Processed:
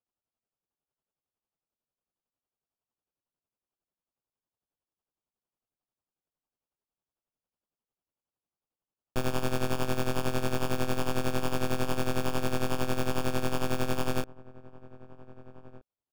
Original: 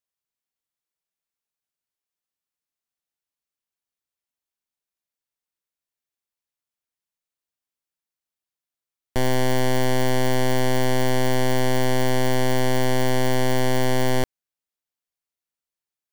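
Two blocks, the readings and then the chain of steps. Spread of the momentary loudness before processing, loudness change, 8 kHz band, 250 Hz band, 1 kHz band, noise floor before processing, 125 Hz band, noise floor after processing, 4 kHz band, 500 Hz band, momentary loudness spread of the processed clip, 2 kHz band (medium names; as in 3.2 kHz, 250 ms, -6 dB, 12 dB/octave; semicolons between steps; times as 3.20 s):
2 LU, -8.5 dB, -9.0 dB, -8.0 dB, -8.5 dB, under -85 dBFS, -9.0 dB, under -85 dBFS, -9.0 dB, -9.5 dB, 2 LU, -9.5 dB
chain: tremolo 11 Hz, depth 71%; sample-and-hold 22×; echo from a far wall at 270 m, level -19 dB; trim -5.5 dB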